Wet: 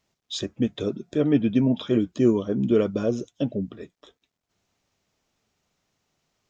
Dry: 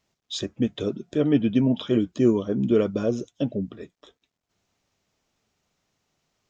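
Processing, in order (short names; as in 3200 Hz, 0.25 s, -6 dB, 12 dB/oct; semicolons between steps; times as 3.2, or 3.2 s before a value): 0.72–2.07 notch 3000 Hz, Q 12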